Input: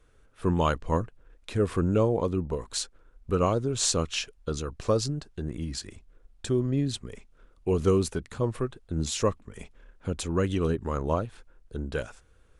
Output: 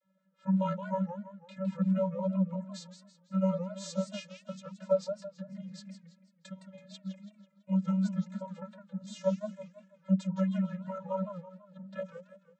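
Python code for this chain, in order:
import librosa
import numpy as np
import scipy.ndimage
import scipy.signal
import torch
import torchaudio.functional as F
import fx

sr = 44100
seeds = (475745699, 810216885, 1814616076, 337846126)

y = fx.hpss(x, sr, part='harmonic', gain_db=-12)
y = fx.vocoder(y, sr, bands=32, carrier='square', carrier_hz=190.0)
y = fx.echo_warbled(y, sr, ms=165, feedback_pct=41, rate_hz=2.8, cents=196, wet_db=-9.5)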